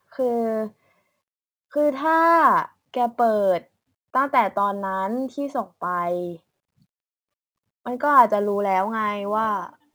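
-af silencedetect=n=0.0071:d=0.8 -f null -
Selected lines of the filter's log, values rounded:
silence_start: 0.70
silence_end: 1.73 | silence_duration: 1.03
silence_start: 6.37
silence_end: 7.86 | silence_duration: 1.49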